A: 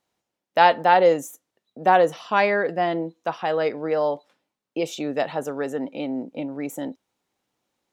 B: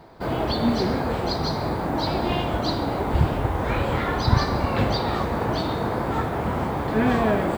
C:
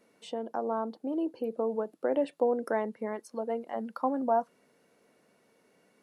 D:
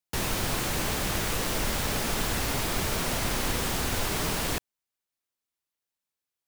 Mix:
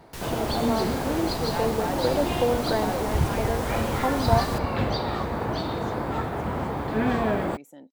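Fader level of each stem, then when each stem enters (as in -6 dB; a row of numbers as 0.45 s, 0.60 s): -16.5 dB, -3.5 dB, +3.0 dB, -8.5 dB; 0.95 s, 0.00 s, 0.00 s, 0.00 s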